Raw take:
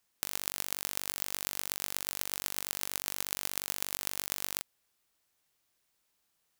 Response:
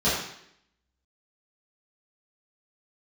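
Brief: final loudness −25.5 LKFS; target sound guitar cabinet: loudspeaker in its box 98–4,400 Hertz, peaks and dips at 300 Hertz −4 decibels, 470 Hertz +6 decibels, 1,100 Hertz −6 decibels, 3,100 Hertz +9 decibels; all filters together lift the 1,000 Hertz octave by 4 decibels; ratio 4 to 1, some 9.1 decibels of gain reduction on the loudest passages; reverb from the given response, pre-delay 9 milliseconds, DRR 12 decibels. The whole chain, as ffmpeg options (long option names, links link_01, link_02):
-filter_complex "[0:a]equalizer=frequency=1000:width_type=o:gain=8,acompressor=threshold=-36dB:ratio=4,asplit=2[link_01][link_02];[1:a]atrim=start_sample=2205,adelay=9[link_03];[link_02][link_03]afir=irnorm=-1:irlink=0,volume=-27.5dB[link_04];[link_01][link_04]amix=inputs=2:normalize=0,highpass=98,equalizer=frequency=300:width_type=q:width=4:gain=-4,equalizer=frequency=470:width_type=q:width=4:gain=6,equalizer=frequency=1100:width_type=q:width=4:gain=-6,equalizer=frequency=3100:width_type=q:width=4:gain=9,lowpass=frequency=4400:width=0.5412,lowpass=frequency=4400:width=1.3066,volume=20.5dB"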